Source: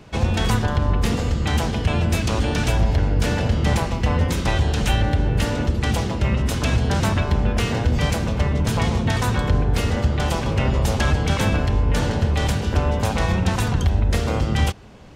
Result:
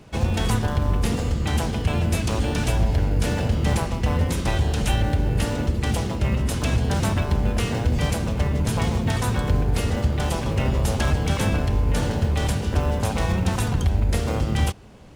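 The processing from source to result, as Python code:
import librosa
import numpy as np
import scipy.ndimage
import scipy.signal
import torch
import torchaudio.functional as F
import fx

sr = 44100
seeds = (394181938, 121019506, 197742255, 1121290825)

p1 = fx.peak_eq(x, sr, hz=10000.0, db=7.0, octaves=0.69)
p2 = fx.sample_hold(p1, sr, seeds[0], rate_hz=2300.0, jitter_pct=0)
p3 = p1 + (p2 * librosa.db_to_amplitude(-11.0))
y = p3 * librosa.db_to_amplitude(-4.0)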